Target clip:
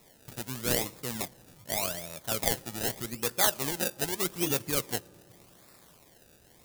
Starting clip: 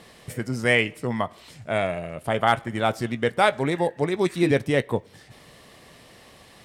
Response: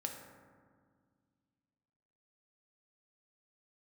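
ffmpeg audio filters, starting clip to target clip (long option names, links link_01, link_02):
-filter_complex "[0:a]acrusher=samples=28:mix=1:aa=0.000001:lfo=1:lforange=28:lforate=0.83,asplit=2[link_01][link_02];[1:a]atrim=start_sample=2205,asetrate=28665,aresample=44100[link_03];[link_02][link_03]afir=irnorm=-1:irlink=0,volume=-20dB[link_04];[link_01][link_04]amix=inputs=2:normalize=0,crystalizer=i=4:c=0,volume=-12.5dB"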